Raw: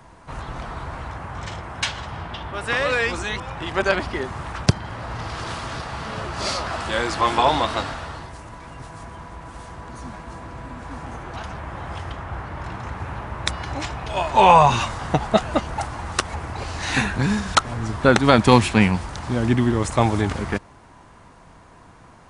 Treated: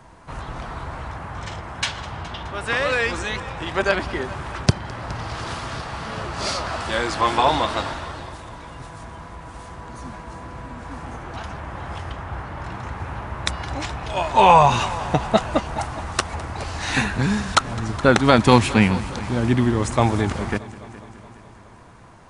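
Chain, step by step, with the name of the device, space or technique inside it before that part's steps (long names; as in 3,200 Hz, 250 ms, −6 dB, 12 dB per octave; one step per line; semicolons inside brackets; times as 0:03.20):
multi-head tape echo (echo machine with several playback heads 209 ms, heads first and second, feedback 58%, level −21 dB; tape wow and flutter 23 cents)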